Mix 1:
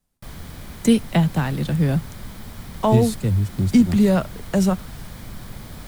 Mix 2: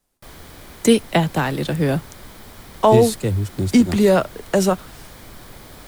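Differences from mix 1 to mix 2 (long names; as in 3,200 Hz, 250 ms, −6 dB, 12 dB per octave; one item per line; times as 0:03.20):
speech +5.5 dB
master: add low shelf with overshoot 260 Hz −6.5 dB, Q 1.5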